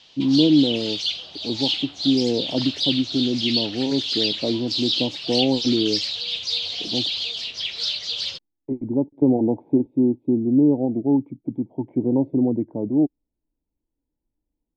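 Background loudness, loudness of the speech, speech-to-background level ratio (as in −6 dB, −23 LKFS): −24.5 LKFS, −22.5 LKFS, 2.0 dB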